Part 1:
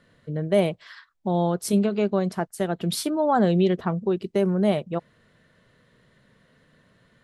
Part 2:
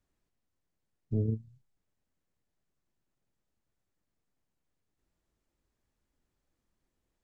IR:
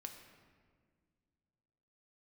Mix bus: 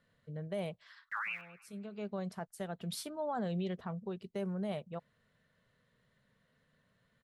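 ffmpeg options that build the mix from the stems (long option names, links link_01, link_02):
-filter_complex "[0:a]equalizer=frequency=330:width_type=o:width=0.45:gain=-9.5,volume=-13dB[link_01];[1:a]aeval=exprs='val(0)*gte(abs(val(0)),0.00473)':channel_layout=same,aeval=exprs='val(0)*sin(2*PI*1900*n/s+1900*0.35/3.8*sin(2*PI*3.8*n/s))':channel_layout=same,volume=-3dB,asplit=3[link_02][link_03][link_04];[link_03]volume=-19.5dB[link_05];[link_04]apad=whole_len=318989[link_06];[link_01][link_06]sidechaincompress=threshold=-59dB:ratio=4:attack=7:release=438[link_07];[link_05]aecho=0:1:106|212|318|424|530|636|742|848:1|0.52|0.27|0.141|0.0731|0.038|0.0198|0.0103[link_08];[link_07][link_02][link_08]amix=inputs=3:normalize=0,alimiter=level_in=5.5dB:limit=-24dB:level=0:latency=1:release=11,volume=-5.5dB"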